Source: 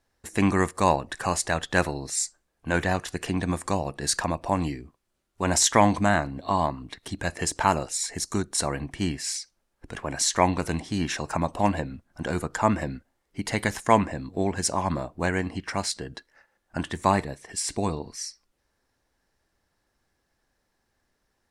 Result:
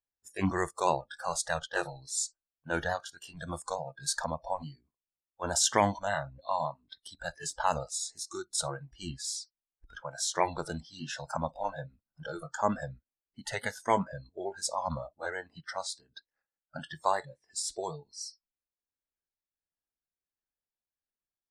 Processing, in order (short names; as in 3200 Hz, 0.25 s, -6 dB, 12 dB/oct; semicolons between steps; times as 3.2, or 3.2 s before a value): repeated pitch sweeps -1 st, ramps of 0.289 s; spectral noise reduction 23 dB; gain -5 dB